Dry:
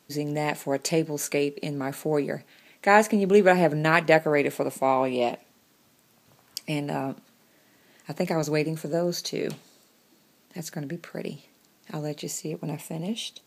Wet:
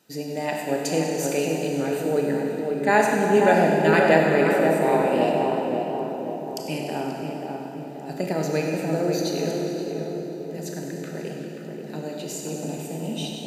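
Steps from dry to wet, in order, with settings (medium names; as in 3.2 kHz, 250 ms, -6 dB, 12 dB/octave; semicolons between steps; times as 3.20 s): comb of notches 1.1 kHz; on a send: filtered feedback delay 534 ms, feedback 62%, low-pass 1.2 kHz, level -3 dB; on the sum: Schroeder reverb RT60 2.3 s, combs from 25 ms, DRR 1 dB; modulated delay 99 ms, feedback 74%, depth 101 cents, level -13.5 dB; trim -1 dB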